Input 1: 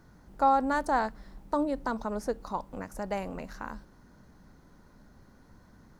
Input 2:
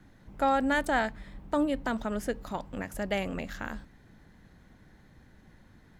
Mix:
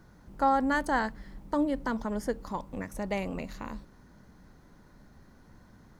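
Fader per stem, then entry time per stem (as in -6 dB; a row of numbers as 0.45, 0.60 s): 0.0, -8.0 dB; 0.00, 0.00 s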